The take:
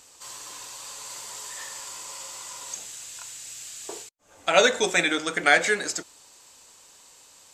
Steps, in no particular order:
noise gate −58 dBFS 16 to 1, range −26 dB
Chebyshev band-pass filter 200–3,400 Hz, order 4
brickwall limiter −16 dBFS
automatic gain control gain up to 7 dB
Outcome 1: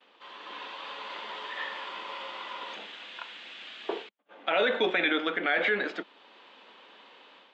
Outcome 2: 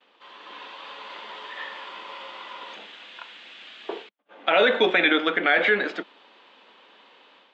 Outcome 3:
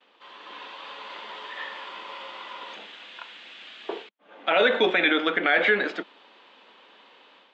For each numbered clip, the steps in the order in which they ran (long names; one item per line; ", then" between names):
noise gate, then automatic gain control, then Chebyshev band-pass filter, then brickwall limiter
noise gate, then Chebyshev band-pass filter, then brickwall limiter, then automatic gain control
brickwall limiter, then automatic gain control, then noise gate, then Chebyshev band-pass filter